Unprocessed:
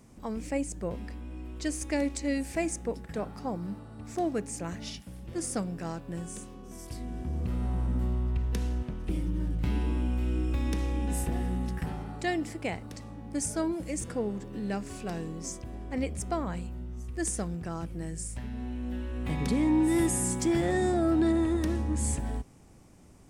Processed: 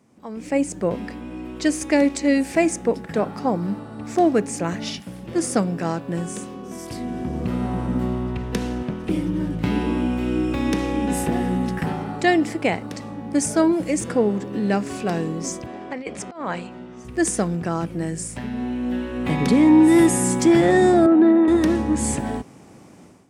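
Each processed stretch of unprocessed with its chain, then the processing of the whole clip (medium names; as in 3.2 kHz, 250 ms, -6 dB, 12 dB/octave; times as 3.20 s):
15.66–17.05 s: high-pass 560 Hz 6 dB/octave + distance through air 78 m + compressor with a negative ratio -40 dBFS, ratio -0.5
21.06–21.48 s: elliptic high-pass 170 Hz + distance through air 460 m
whole clip: high-pass 160 Hz 12 dB/octave; treble shelf 5.6 kHz -8 dB; level rider gain up to 14.5 dB; trim -1.5 dB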